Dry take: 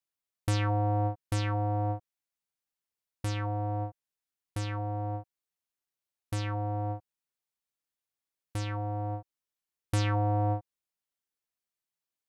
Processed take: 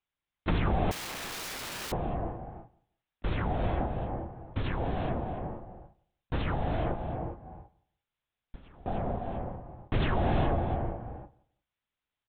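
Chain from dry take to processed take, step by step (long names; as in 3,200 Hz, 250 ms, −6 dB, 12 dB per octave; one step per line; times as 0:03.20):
one-sided soft clipper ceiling −24 dBFS
single-tap delay 295 ms −12 dB
0:06.94–0:08.87: gate with flip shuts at −35 dBFS, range −25 dB
linear-prediction vocoder at 8 kHz whisper
reverb whose tail is shaped and stops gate 430 ms rising, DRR 4.5 dB
in parallel at −1 dB: downward compressor, threshold −37 dBFS, peak gain reduction 13 dB
on the sum: repeating echo 174 ms, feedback 20%, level −22.5 dB
0:00.91–0:01.92: wrap-around overflow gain 34 dB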